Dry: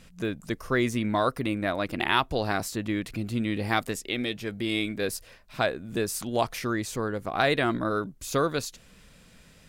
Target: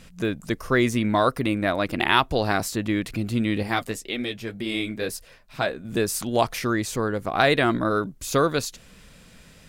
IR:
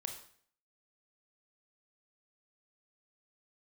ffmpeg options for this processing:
-filter_complex "[0:a]asettb=1/sr,asplit=3[link_01][link_02][link_03];[link_01]atrim=end=3.634[link_04];[link_02]atrim=start=3.63:end=5.85,asetpts=PTS-STARTPTS,afade=type=in:duration=0.004:curve=qsin,afade=type=out:start_time=2.216:duration=0.004:curve=qsin,flanger=delay=3.6:depth=6:regen=-41:speed=1.9:shape=triangular[link_05];[link_03]atrim=start=5.846[link_06];[link_04][link_05]acrossfade=duration=0.004:curve1=hsin:curve2=qsin[link_07];[link_07][link_06]acrossfade=duration=0.004:curve1=qsin:curve2=hsin,volume=4.5dB"

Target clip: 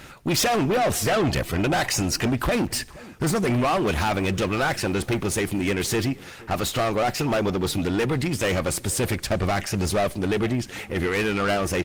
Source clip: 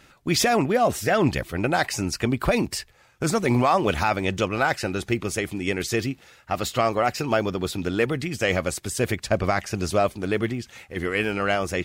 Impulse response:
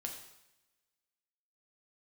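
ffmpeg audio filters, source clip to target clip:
-filter_complex "[0:a]asplit=2[link_01][link_02];[link_02]acompressor=threshold=-35dB:ratio=6,volume=1dB[link_03];[link_01][link_03]amix=inputs=2:normalize=0,aeval=exprs='0.376*(cos(1*acos(clip(val(0)/0.376,-1,1)))-cos(1*PI/2))+0.0075*(cos(3*acos(clip(val(0)/0.376,-1,1)))-cos(3*PI/2))+0.0119*(cos(4*acos(clip(val(0)/0.376,-1,1)))-cos(4*PI/2))+0.0668*(cos(5*acos(clip(val(0)/0.376,-1,1)))-cos(5*PI/2))+0.00668*(cos(7*acos(clip(val(0)/0.376,-1,1)))-cos(7*PI/2))':channel_layout=same,asplit=3[link_04][link_05][link_06];[link_04]afade=type=out:start_time=3.98:duration=0.02[link_07];[link_05]aeval=exprs='val(0)*gte(abs(val(0)),0.00631)':channel_layout=same,afade=type=in:start_time=3.98:duration=0.02,afade=type=out:start_time=5.71:duration=0.02[link_08];[link_06]afade=type=in:start_time=5.71:duration=0.02[link_09];[link_07][link_08][link_09]amix=inputs=3:normalize=0,aeval=exprs='(tanh(8.91*val(0)+0.2)-tanh(0.2))/8.91':channel_layout=same,asplit=2[link_10][link_11];[link_11]adelay=473,lowpass=frequency=1500:poles=1,volume=-20dB,asplit=2[link_12][link_13];[link_13]adelay=473,lowpass=frequency=1500:poles=1,volume=0.21[link_14];[link_10][link_12][link_14]amix=inputs=3:normalize=0,asplit=2[link_15][link_16];[1:a]atrim=start_sample=2205[link_17];[link_16][link_17]afir=irnorm=-1:irlink=0,volume=-16dB[link_18];[link_15][link_18]amix=inputs=2:normalize=0" -ar 48000 -c:a libopus -b:a 24k

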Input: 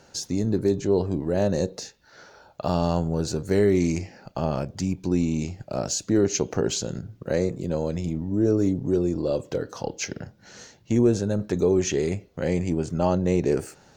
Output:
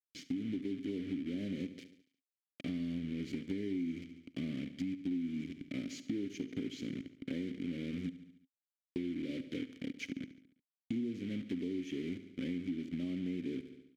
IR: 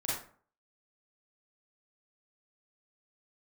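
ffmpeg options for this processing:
-filter_complex "[0:a]asettb=1/sr,asplit=3[link_01][link_02][link_03];[link_01]atrim=end=8.094[link_04];[link_02]atrim=start=8.09:end=8.96,asetpts=PTS-STARTPTS,afade=type=in:duration=0.004:curve=qsin,afade=type=out:start_time=0.866:duration=0.004:curve=qsin,aderivative[link_05];[link_03]atrim=start=8.956[link_06];[link_04][link_05]acrossfade=duration=0.004:curve1=hsin:curve2=qsin[link_07];[link_07][link_06]acrossfade=duration=0.004:curve1=qsin:curve2=hsin,acrusher=bits=4:mix=0:aa=0.000001,asplit=3[link_08][link_09][link_10];[link_08]bandpass=frequency=270:width_type=q:width=8,volume=0dB[link_11];[link_09]bandpass=frequency=2290:width_type=q:width=8,volume=-6dB[link_12];[link_10]bandpass=frequency=3010:width_type=q:width=8,volume=-9dB[link_13];[link_11][link_12][link_13]amix=inputs=3:normalize=0,lowshelf=frequency=210:gain=10.5,aecho=1:1:71|142|213|284|355:0.178|0.096|0.0519|0.028|0.0151,acompressor=threshold=-36dB:ratio=6,volume=1dB"

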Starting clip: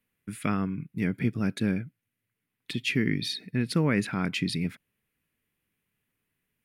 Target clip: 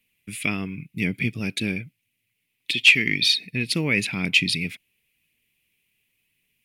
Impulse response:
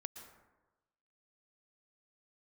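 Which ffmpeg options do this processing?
-filter_complex "[0:a]aphaser=in_gain=1:out_gain=1:delay=3.2:decay=0.21:speed=0.93:type=triangular,highshelf=frequency=1900:width_type=q:width=3:gain=8.5,asettb=1/sr,asplit=3[link_01][link_02][link_03];[link_01]atrim=end=2.734[link_04];[link_02]atrim=start=2.73:end=3.35,asetpts=PTS-STARTPTS,afade=type=in:duration=0.004:curve=qsin,afade=type=out:start_time=0.616:duration=0.004:curve=qsin,asplit=2[link_05][link_06];[link_06]highpass=frequency=720:poles=1,volume=8dB,asoftclip=type=tanh:threshold=-2.5dB[link_07];[link_05][link_07]amix=inputs=2:normalize=0,lowpass=frequency=6500:poles=1,volume=-6dB[link_08];[link_03]atrim=start=3.346[link_09];[link_04][link_08]acrossfade=duration=0.004:curve1=hsin:curve2=qsin[link_10];[link_10][link_09]acrossfade=duration=0.004:curve1=qsin:curve2=hsin"

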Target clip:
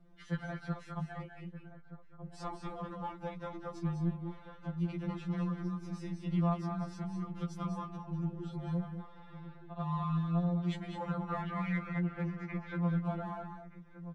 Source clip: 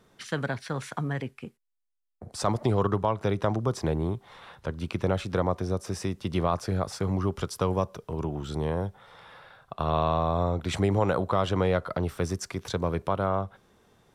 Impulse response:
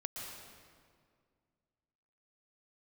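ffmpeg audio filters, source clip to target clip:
-filter_complex "[0:a]asettb=1/sr,asplit=3[link_01][link_02][link_03];[link_01]atrim=end=11.324[link_04];[link_02]atrim=start=11.32:end=12.81,asetpts=PTS-STARTPTS,afade=type=in:duration=0.004:curve=qsin,afade=type=out:start_time=1.486:duration=0.004:curve=qsin,lowpass=frequency=2100:width_type=q:width=3.3[link_05];[link_03]atrim=start=12.806[link_06];[link_04][link_05]acrossfade=duration=0.004:curve1=hsin:curve2=qsin[link_07];[link_07][link_06]acrossfade=duration=0.004:curve1=qsin:curve2=hsin,acrossover=split=160|790[link_08][link_09][link_10];[link_09]acompressor=threshold=-38dB:ratio=6[link_11];[link_08][link_11][link_10]amix=inputs=3:normalize=0,aemphasis=mode=reproduction:type=riaa,asplit=2[link_12][link_13];[link_13]asoftclip=type=hard:threshold=-20dB,volume=-9dB[link_14];[link_12][link_14]amix=inputs=2:normalize=0,asplit=2[link_15][link_16];[link_16]adelay=1224,volume=-13dB,highshelf=frequency=4000:gain=-27.6[link_17];[link_15][link_17]amix=inputs=2:normalize=0[link_18];[1:a]atrim=start_sample=2205,afade=type=out:start_time=0.18:duration=0.01,atrim=end_sample=8379,asetrate=26019,aresample=44100[link_19];[link_18][link_19]afir=irnorm=-1:irlink=0,afftfilt=real='re*2.83*eq(mod(b,8),0)':imag='im*2.83*eq(mod(b,8),0)':win_size=2048:overlap=0.75,volume=-9dB"

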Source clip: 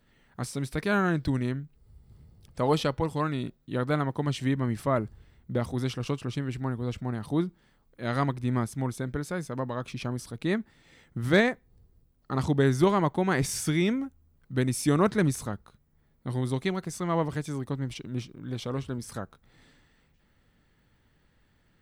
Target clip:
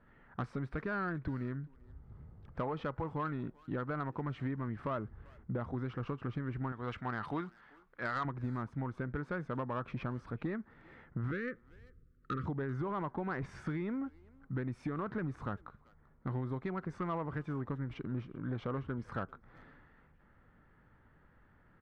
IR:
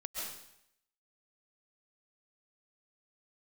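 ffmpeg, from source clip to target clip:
-filter_complex "[0:a]asettb=1/sr,asplit=3[link_01][link_02][link_03];[link_01]atrim=end=6.724[link_04];[link_02]atrim=start=6.72:end=8.25,asetpts=PTS-STARTPTS,afade=type=in:duration=0.004:curve=qsin,afade=type=out:start_time=1.526:duration=0.004:curve=qsin,tiltshelf=frequency=900:gain=-9.5[link_05];[link_03]atrim=start=8.246[link_06];[link_04][link_05]acrossfade=duration=0.004:curve1=hsin:curve2=qsin[link_07];[link_07][link_06]acrossfade=duration=0.004:curve1=qsin:curve2=hsin,alimiter=limit=-17.5dB:level=0:latency=1:release=48,acompressor=threshold=-33dB:ratio=16,lowpass=frequency=1400:width_type=q:width=1.9,asoftclip=type=tanh:threshold=-28dB,asettb=1/sr,asplit=3[link_08][link_09][link_10];[link_08]atrim=end=11.314[link_11];[link_09]atrim=start=11.31:end=12.46,asetpts=PTS-STARTPTS,afade=type=in:duration=0.004:curve=qsin,afade=type=out:start_time=1.146:duration=0.004:curve=qsin,asuperstop=centerf=790:order=12:qfactor=1.2[link_12];[link_10]atrim=start=12.456[link_13];[link_11][link_12]acrossfade=duration=0.004:curve1=hsin:curve2=qsin[link_14];[link_14][link_13]acrossfade=duration=0.004:curve1=qsin:curve2=hsin,asplit=2[link_15][link_16];[link_16]adelay=390,highpass=300,lowpass=3400,asoftclip=type=hard:threshold=-38dB,volume=-22dB[link_17];[link_15][link_17]amix=inputs=2:normalize=0,volume=1dB"

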